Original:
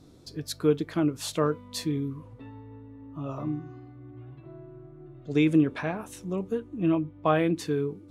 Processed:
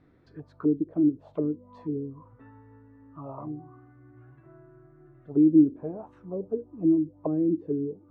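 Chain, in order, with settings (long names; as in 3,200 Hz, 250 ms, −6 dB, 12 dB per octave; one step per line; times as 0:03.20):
envelope-controlled low-pass 310–2,000 Hz down, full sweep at −23 dBFS
level −7.5 dB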